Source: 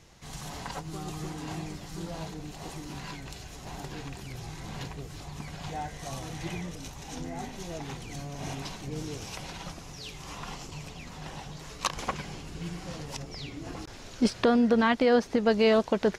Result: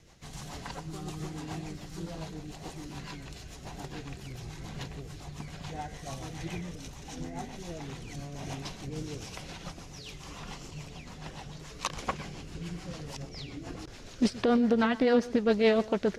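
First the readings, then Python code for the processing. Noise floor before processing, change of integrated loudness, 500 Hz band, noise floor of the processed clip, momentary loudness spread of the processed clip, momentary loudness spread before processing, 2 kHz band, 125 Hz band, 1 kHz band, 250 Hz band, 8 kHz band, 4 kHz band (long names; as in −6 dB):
−45 dBFS, −2.0 dB, −2.0 dB, −47 dBFS, 19 LU, 18 LU, −3.0 dB, −1.5 dB, −4.0 dB, −1.5 dB, −3.5 dB, −3.0 dB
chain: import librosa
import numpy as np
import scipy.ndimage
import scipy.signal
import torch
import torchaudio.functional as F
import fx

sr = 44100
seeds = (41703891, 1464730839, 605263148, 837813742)

y = fx.rotary(x, sr, hz=7.0)
y = y + 10.0 ** (-19.0 / 20.0) * np.pad(y, (int(124 * sr / 1000.0), 0))[:len(y)]
y = fx.doppler_dist(y, sr, depth_ms=0.2)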